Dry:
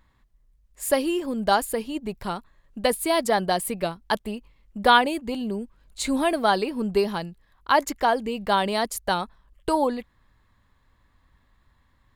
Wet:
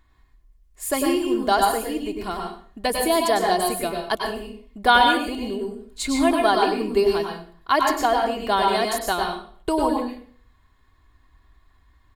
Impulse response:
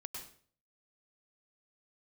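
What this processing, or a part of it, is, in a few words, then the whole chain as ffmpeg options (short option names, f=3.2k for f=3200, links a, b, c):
microphone above a desk: -filter_complex "[0:a]aecho=1:1:2.8:0.54[a];[1:a]atrim=start_sample=2205[b];[a][b]afir=irnorm=-1:irlink=0,volume=4.5dB"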